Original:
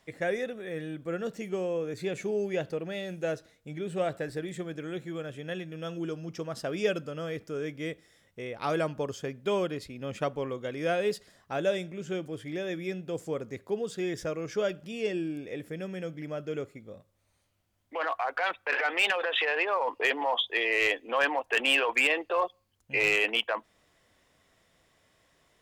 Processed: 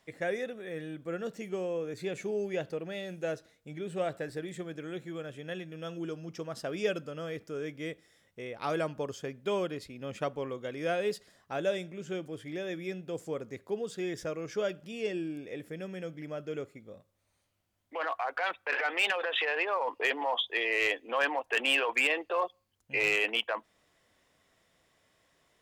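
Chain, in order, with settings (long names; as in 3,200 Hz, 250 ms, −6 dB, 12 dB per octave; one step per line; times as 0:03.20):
low-shelf EQ 100 Hz −5 dB
level −2.5 dB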